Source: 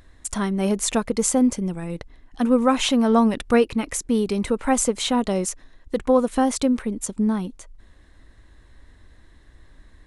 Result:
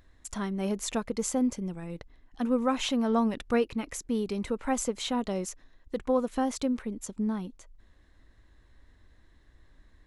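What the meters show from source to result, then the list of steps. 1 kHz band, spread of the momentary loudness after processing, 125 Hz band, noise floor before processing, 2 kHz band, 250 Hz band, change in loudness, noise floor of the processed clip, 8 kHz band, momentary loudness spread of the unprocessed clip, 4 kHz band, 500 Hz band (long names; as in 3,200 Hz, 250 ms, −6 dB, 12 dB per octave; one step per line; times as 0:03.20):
−8.5 dB, 12 LU, −8.5 dB, −53 dBFS, −8.5 dB, −8.5 dB, −8.5 dB, −61 dBFS, −10.5 dB, 11 LU, −8.5 dB, −8.5 dB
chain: parametric band 9,100 Hz −9 dB 0.24 octaves
level −8.5 dB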